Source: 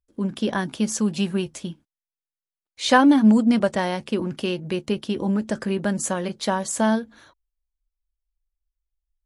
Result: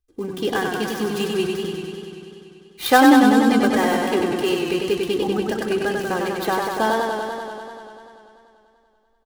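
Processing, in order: dead-time distortion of 0.078 ms; comb 2.5 ms, depth 68%; modulated delay 97 ms, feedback 79%, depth 75 cents, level -4 dB; trim +1 dB

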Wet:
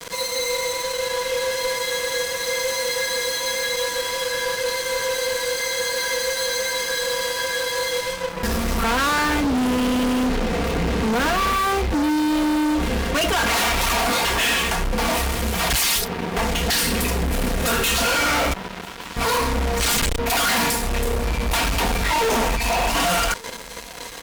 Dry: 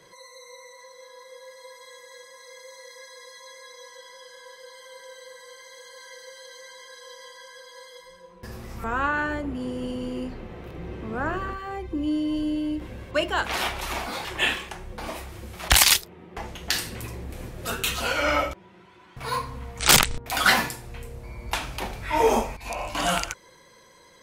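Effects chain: companding laws mixed up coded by mu; comb 4.3 ms, depth 82%; fuzz box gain 40 dB, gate -42 dBFS; on a send: delay 1169 ms -23.5 dB; on the sum: trim -5.5 dB

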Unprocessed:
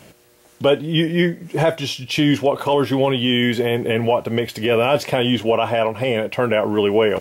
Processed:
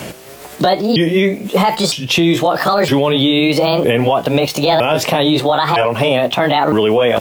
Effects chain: sawtooth pitch modulation +6.5 st, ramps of 960 ms; loudness maximiser +14 dB; three bands compressed up and down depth 40%; trim -3.5 dB

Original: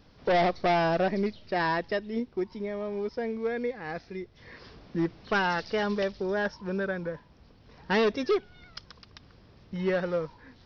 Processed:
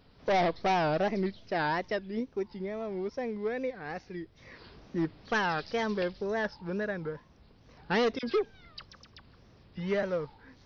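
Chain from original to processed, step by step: 8.19–10.03 s: phase dispersion lows, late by 42 ms, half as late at 1.9 kHz; wow and flutter 150 cents; trim -2.5 dB

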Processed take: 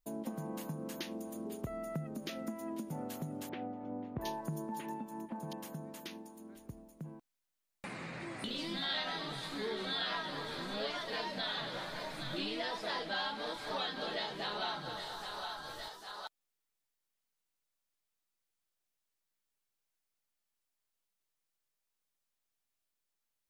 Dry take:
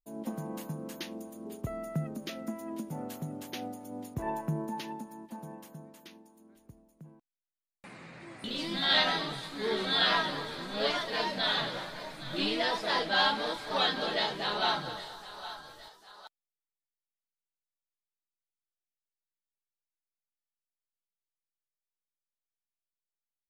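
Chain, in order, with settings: compression 3:1, threshold -48 dBFS, peak gain reduction 19 dB; 3.49–5.53 s: bands offset in time lows, highs 720 ms, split 2.7 kHz; trim +7 dB

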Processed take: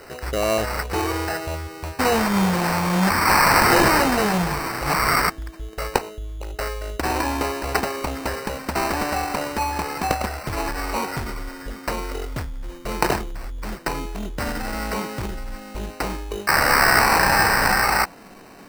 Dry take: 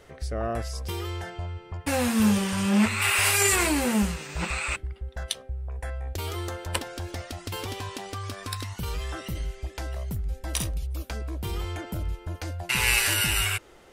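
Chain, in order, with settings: gliding tape speed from 96% -> 53%; in parallel at -1 dB: compressor with a negative ratio -31 dBFS, ratio -1; on the sum: bass shelf 190 Hz -11.5 dB; sample-and-hold 13×; dynamic bell 850 Hz, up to +4 dB, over -39 dBFS, Q 2.4; trim +5 dB

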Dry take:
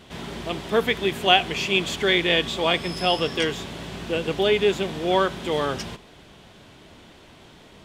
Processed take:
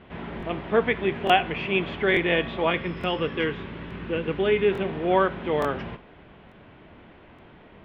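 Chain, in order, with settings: low-pass 2.5 kHz 24 dB/octave; de-hum 132.8 Hz, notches 39; 2.70–4.72 s: peaking EQ 700 Hz -9.5 dB 0.49 oct; crackling interface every 0.87 s, samples 1024, repeat, from 0.38 s

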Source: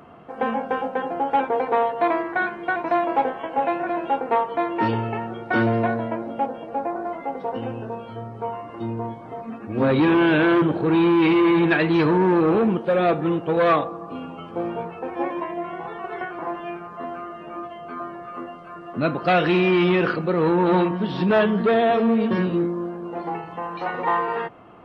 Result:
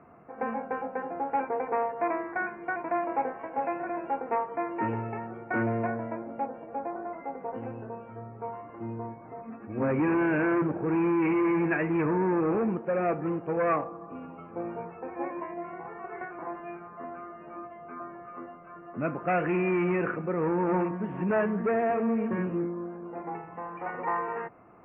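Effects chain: steep low-pass 2.5 kHz 72 dB/octave; trim -8 dB

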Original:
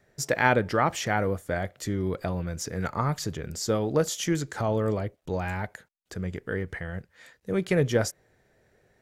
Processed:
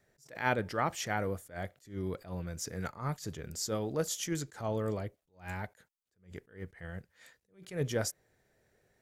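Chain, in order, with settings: treble shelf 5.3 kHz +7.5 dB; attacks held to a fixed rise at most 180 dB/s; trim -7.5 dB

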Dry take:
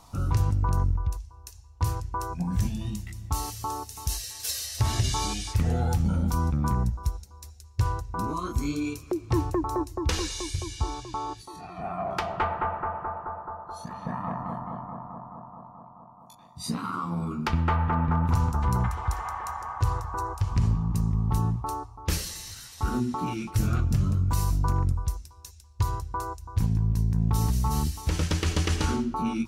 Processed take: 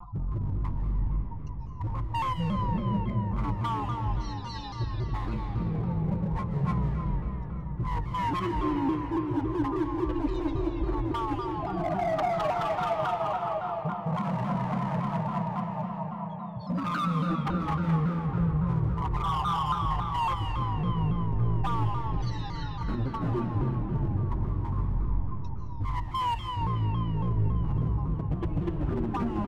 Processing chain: spectral contrast enhancement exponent 2.4; comb 6.2 ms, depth 93%; reverse; compression 6:1, threshold -34 dBFS, peak gain reduction 15.5 dB; reverse; low-pass 2.7 kHz 24 dB/octave; hard clipper -36.5 dBFS, distortion -11 dB; on a send at -1 dB: reverberation RT60 5.1 s, pre-delay 110 ms; on the sum: vibrato with a chosen wave saw down 3.6 Hz, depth 160 cents; trim +9 dB

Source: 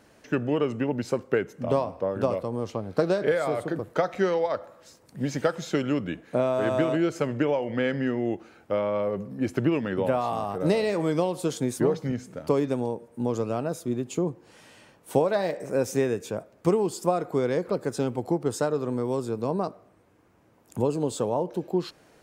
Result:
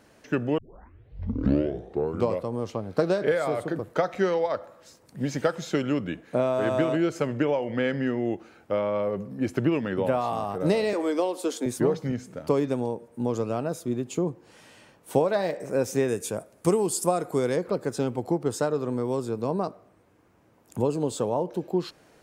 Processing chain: 0.58 s: tape start 1.85 s; 10.93–11.66 s: steep high-pass 230 Hz 48 dB/octave; 16.08–17.56 s: peaking EQ 10 kHz +15 dB 1 oct

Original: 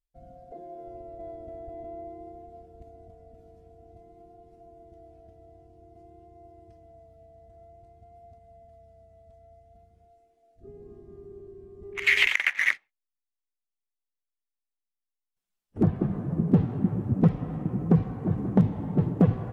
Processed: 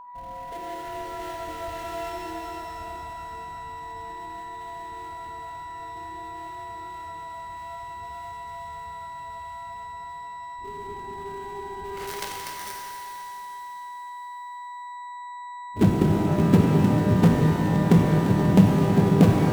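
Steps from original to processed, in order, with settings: dead-time distortion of 0.23 ms; whistle 980 Hz -42 dBFS; pitch-shifted reverb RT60 3.2 s, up +12 st, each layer -8 dB, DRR -0.5 dB; trim +2.5 dB

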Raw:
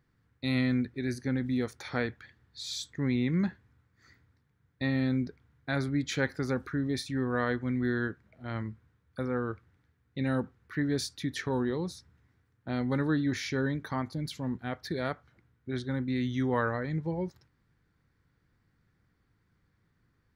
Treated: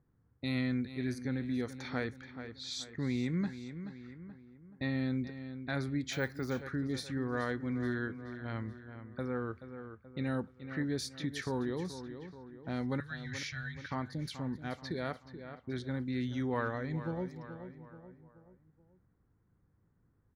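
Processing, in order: 13.00–13.91 s: elliptic band-stop 120–1500 Hz; feedback delay 429 ms, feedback 44%, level -13.5 dB; in parallel at +1 dB: compression, threshold -40 dBFS, peak gain reduction 16 dB; on the sum: level-controlled noise filter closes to 890 Hz, open at -27.5 dBFS; 6.13–6.62 s: careless resampling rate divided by 2×, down none, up hold; trim -7 dB

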